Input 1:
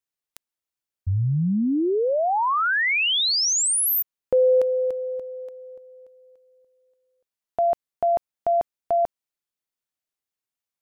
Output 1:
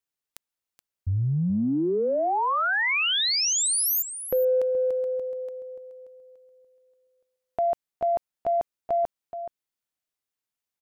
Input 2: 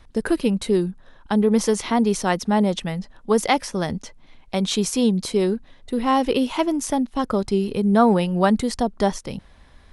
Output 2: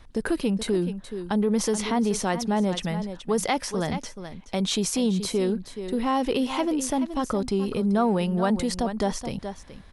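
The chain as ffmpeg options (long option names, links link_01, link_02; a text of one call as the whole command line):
ffmpeg -i in.wav -filter_complex "[0:a]asplit=2[link_01][link_02];[link_02]aecho=0:1:425:0.2[link_03];[link_01][link_03]amix=inputs=2:normalize=0,acompressor=threshold=-24dB:ratio=2:attack=2.6:release=21:knee=6:detection=rms" out.wav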